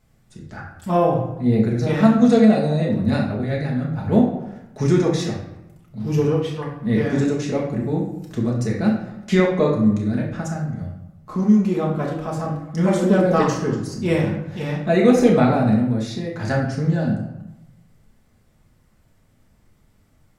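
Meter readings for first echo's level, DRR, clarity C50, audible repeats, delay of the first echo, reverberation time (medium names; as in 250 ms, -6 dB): no echo, -3.0 dB, 4.5 dB, no echo, no echo, 0.95 s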